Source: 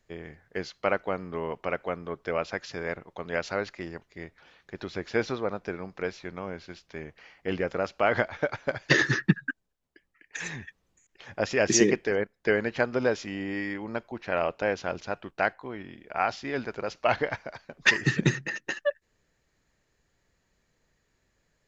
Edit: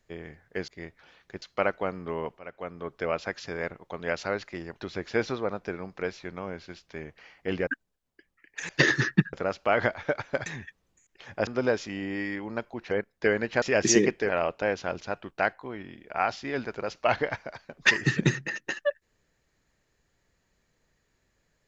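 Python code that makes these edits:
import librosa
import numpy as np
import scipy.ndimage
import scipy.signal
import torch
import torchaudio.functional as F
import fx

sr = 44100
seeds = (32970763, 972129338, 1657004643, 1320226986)

y = fx.edit(x, sr, fx.fade_in_from(start_s=1.64, length_s=0.56, floor_db=-19.5),
    fx.move(start_s=4.07, length_s=0.74, to_s=0.68),
    fx.swap(start_s=7.67, length_s=1.13, other_s=9.44, other_length_s=1.02),
    fx.swap(start_s=11.47, length_s=0.67, other_s=12.85, other_length_s=1.44), tone=tone)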